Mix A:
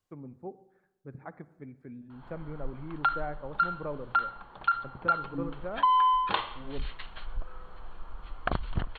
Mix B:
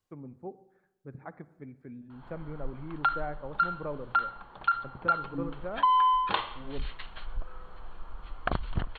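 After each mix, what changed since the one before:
none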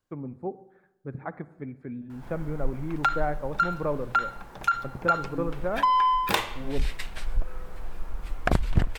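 first voice +8.0 dB; background: remove rippled Chebyshev low-pass 4400 Hz, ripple 9 dB

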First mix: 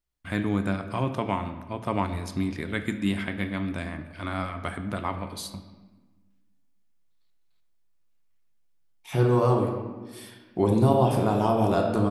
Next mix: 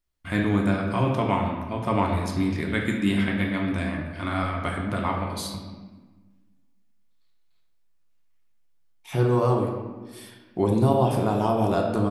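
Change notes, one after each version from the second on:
first voice: send +10.0 dB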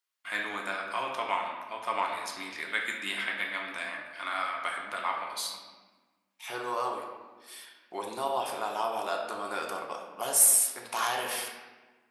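second voice: entry -2.65 s; master: add HPF 990 Hz 12 dB/oct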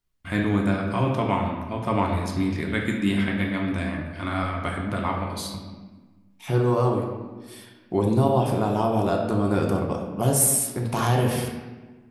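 master: remove HPF 990 Hz 12 dB/oct

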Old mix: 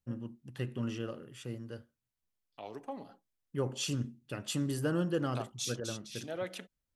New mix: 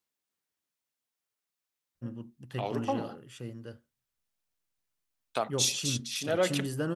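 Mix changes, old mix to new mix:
first voice: entry +1.95 s; second voice +10.5 dB

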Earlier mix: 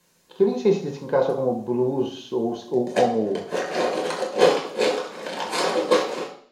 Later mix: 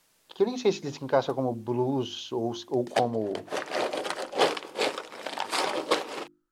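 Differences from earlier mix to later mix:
speech: add high shelf 4300 Hz +9 dB; reverb: off

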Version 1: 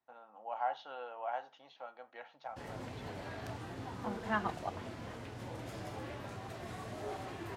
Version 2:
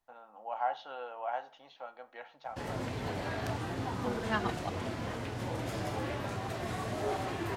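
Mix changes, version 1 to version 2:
first voice: send +11.5 dB; second voice: remove BPF 140–2100 Hz; background +8.0 dB

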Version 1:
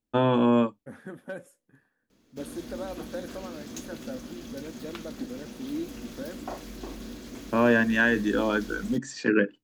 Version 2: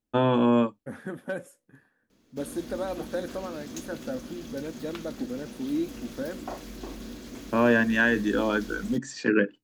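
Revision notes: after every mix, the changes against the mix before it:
second voice +5.0 dB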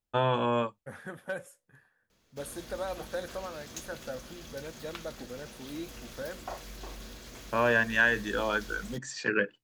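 master: add bell 270 Hz -14.5 dB 1.1 oct

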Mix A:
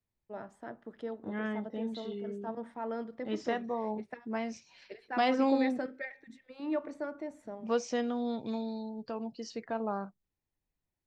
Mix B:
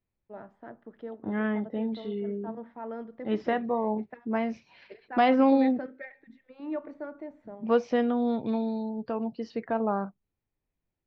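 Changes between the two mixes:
second voice +7.5 dB; master: add air absorption 320 m

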